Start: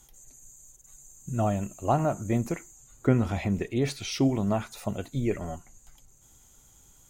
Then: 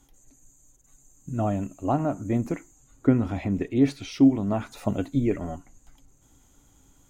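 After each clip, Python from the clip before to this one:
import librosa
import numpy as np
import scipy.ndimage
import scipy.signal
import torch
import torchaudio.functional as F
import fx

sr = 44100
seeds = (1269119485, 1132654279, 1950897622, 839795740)

y = fx.high_shelf(x, sr, hz=3800.0, db=-9.0)
y = fx.rider(y, sr, range_db=10, speed_s=0.5)
y = fx.peak_eq(y, sr, hz=280.0, db=13.5, octaves=0.21)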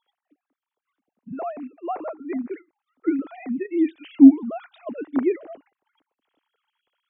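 y = fx.sine_speech(x, sr)
y = y * librosa.db_to_amplitude(3.0)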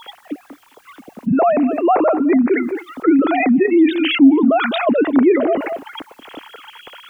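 y = x + 10.0 ** (-23.5 / 20.0) * np.pad(x, (int(213 * sr / 1000.0), 0))[:len(x)]
y = fx.env_flatten(y, sr, amount_pct=70)
y = y * librosa.db_to_amplitude(-1.0)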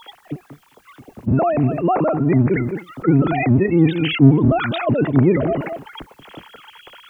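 y = fx.octave_divider(x, sr, octaves=1, level_db=2.0)
y = y * librosa.db_to_amplitude(-4.0)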